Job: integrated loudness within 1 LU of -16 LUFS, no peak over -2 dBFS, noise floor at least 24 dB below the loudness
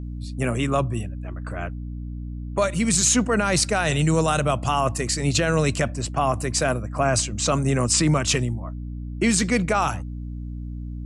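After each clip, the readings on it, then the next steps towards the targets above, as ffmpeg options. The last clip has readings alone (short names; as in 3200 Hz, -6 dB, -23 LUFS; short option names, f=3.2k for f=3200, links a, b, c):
hum 60 Hz; harmonics up to 300 Hz; hum level -29 dBFS; loudness -22.0 LUFS; peak -8.0 dBFS; loudness target -16.0 LUFS
-> -af "bandreject=f=60:t=h:w=4,bandreject=f=120:t=h:w=4,bandreject=f=180:t=h:w=4,bandreject=f=240:t=h:w=4,bandreject=f=300:t=h:w=4"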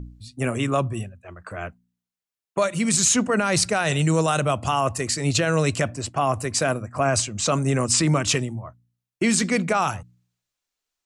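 hum none; loudness -22.0 LUFS; peak -8.5 dBFS; loudness target -16.0 LUFS
-> -af "volume=6dB"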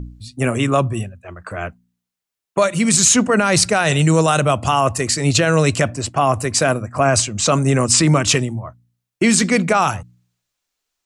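loudness -16.0 LUFS; peak -2.5 dBFS; noise floor -83 dBFS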